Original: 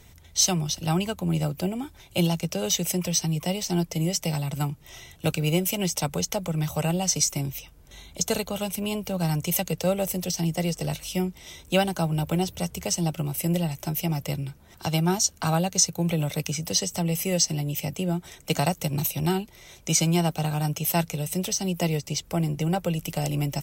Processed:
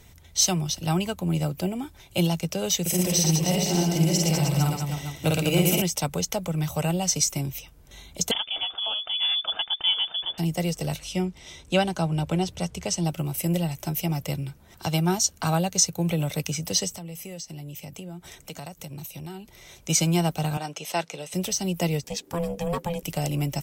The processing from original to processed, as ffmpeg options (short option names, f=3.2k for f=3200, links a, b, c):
-filter_complex "[0:a]asettb=1/sr,asplit=3[a][b][c];[a]atrim=end=2.814[d];[b]atrim=start=2.81:end=5.82,asetpts=PTS-STARTPTS,afade=t=in:d=0.004:c=qsin,afade=t=out:st=3.006:d=0.004:c=qsin,aecho=1:1:50|115|199.5|309.4|452.2|637.8:0.794|0.631|0.501|0.398|0.316|0.251,atrim=end_sample=132741[e];[c]atrim=start=5.816[f];[d][e]acrossfade=d=0.004:c1=hsin:c2=qsin[g];[g][f]acrossfade=d=0.004:c1=qsin:c2=hsin,asettb=1/sr,asplit=3[h][i][j];[h]atrim=end=8.314[k];[i]atrim=start=8.31:end=10.38,asetpts=PTS-STARTPTS,afade=t=in:d=0.004:c=qsin,afade=t=out:st=2.066:d=0.004:c=qsin,lowpass=f=3.1k:t=q:w=0.5098,lowpass=f=3.1k:t=q:w=0.6013,lowpass=f=3.1k:t=q:w=0.9,lowpass=f=3.1k:t=q:w=2.563,afreqshift=-3600[l];[j]atrim=start=10.376[m];[k][l]acrossfade=d=0.004:c1=hsin:c2=qsin[n];[n][m]acrossfade=d=0.004:c1=qsin:c2=hsin,asettb=1/sr,asplit=3[o][p][q];[o]atrim=end=10.994[r];[p]atrim=start=10.99:end=13.05,asetpts=PTS-STARTPTS,afade=t=in:d=0.004:c=qsin,afade=t=out:st=2.056:d=0.004:c=qsin,lowpass=8k[s];[q]atrim=start=13.046[t];[r][s]acrossfade=d=0.004:c1=hsin:c2=qsin[u];[u][t]acrossfade=d=0.004:c1=qsin:c2=hsin,asplit=3[v][w][x];[v]afade=t=out:st=16.92:d=0.02[y];[w]acompressor=threshold=-37dB:ratio=4:attack=3.2:release=140:knee=1:detection=peak,afade=t=in:st=16.92:d=0.02,afade=t=out:st=19.88:d=0.02[z];[x]afade=t=in:st=19.88:d=0.02[aa];[y][z][aa]amix=inputs=3:normalize=0,asettb=1/sr,asplit=3[ab][ac][ad];[ab]atrim=end=20.574[ae];[ac]atrim=start=20.57:end=21.34,asetpts=PTS-STARTPTS,afade=t=in:d=0.004:c=qsin,afade=t=out:st=0.766:d=0.004:c=qsin,highpass=350,lowpass=6.4k[af];[ad]atrim=start=21.336[ag];[ae][af]acrossfade=d=0.004:c1=hsin:c2=qsin[ah];[ah][ag]acrossfade=d=0.004:c1=qsin:c2=hsin,asettb=1/sr,asplit=3[ai][aj][ak];[ai]atrim=end=22.044[al];[aj]atrim=start=22.04:end=23.03,asetpts=PTS-STARTPTS,afade=t=in:d=0.004:c=qsin,afade=t=out:st=0.986:d=0.004:c=qsin,aeval=exprs='val(0)*sin(2*PI*340*n/s)':c=same[am];[ak]atrim=start=23.026[an];[al][am]acrossfade=d=0.004:c1=hsin:c2=qsin[ao];[ao][an]acrossfade=d=0.004:c1=qsin:c2=hsin"